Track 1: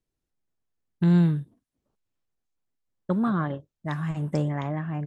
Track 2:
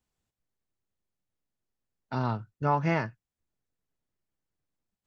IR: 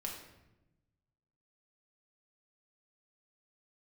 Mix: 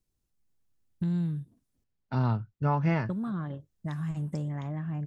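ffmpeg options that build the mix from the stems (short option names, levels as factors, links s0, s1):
-filter_complex "[0:a]acompressor=threshold=0.0141:ratio=2.5,volume=0.708,asplit=3[s0][s1][s2];[s0]atrim=end=1.84,asetpts=PTS-STARTPTS,afade=t=out:st=1.836:d=0.004:c=hsin[s3];[s1]atrim=start=1.84:end=3.05,asetpts=PTS-STARTPTS,volume=0[s4];[s2]atrim=start=3.05,asetpts=PTS-STARTPTS,afade=t=in:d=0.004:c=hsin[s5];[s3][s4][s5]concat=n=3:v=0:a=1[s6];[1:a]lowpass=3500,dynaudnorm=f=260:g=3:m=4.73,volume=0.178[s7];[s6][s7]amix=inputs=2:normalize=0,bass=f=250:g=8,treble=f=4000:g=8"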